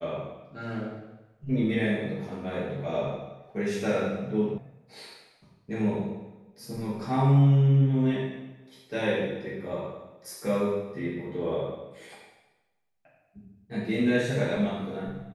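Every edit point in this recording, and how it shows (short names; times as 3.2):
4.58 sound cut off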